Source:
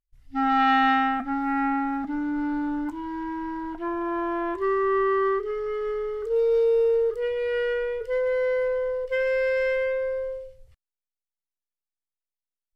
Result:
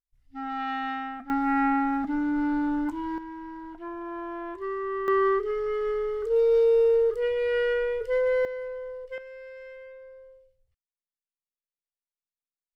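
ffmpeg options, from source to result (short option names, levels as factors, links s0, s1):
-af "asetnsamples=n=441:p=0,asendcmd='1.3 volume volume 1dB;3.18 volume volume -8dB;5.08 volume volume 0.5dB;8.45 volume volume -10dB;9.18 volume volume -19.5dB',volume=0.282"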